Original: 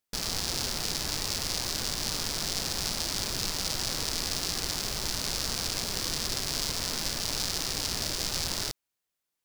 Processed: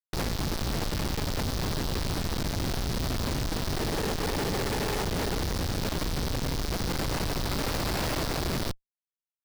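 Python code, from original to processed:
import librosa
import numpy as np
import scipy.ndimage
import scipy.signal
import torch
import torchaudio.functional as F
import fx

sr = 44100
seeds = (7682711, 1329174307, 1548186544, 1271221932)

y = fx.fade_out_tail(x, sr, length_s=2.77)
y = fx.high_shelf(y, sr, hz=11000.0, db=4.0)
y = fx.over_compress(y, sr, threshold_db=-37.0, ratio=-1.0)
y = fx.small_body(y, sr, hz=(440.0, 830.0, 1800.0), ring_ms=40, db=14, at=(3.76, 5.44))
y = fx.schmitt(y, sr, flips_db=-35.0)
y = y * 10.0 ** (8.5 / 20.0)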